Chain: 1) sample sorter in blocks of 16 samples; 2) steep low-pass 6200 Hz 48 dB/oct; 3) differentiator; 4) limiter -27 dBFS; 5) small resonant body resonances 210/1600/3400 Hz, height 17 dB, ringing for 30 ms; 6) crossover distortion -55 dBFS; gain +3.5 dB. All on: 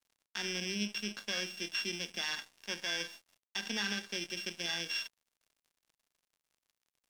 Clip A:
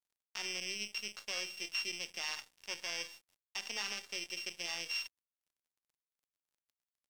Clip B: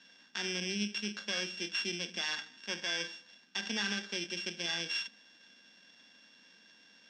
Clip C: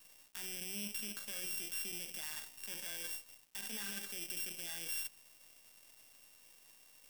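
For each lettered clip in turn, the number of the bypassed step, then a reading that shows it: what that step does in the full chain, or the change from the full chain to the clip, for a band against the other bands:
5, 125 Hz band -11.5 dB; 6, distortion -17 dB; 2, 8 kHz band +12.0 dB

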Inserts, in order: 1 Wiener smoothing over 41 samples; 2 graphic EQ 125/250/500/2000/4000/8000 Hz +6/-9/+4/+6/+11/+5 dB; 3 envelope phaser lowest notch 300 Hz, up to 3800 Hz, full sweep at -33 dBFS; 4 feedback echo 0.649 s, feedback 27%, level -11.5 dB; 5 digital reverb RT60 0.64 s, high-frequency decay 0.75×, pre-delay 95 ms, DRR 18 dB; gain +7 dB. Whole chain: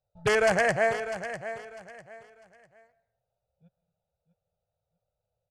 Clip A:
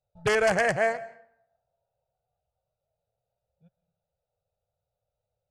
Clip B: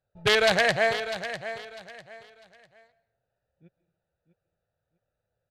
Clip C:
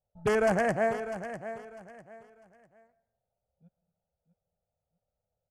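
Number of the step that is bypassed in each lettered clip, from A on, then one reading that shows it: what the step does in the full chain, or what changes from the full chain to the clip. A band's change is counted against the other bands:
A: 4, echo-to-direct -10.5 dB to -18.0 dB; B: 3, 4 kHz band +11.5 dB; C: 2, 250 Hz band +8.0 dB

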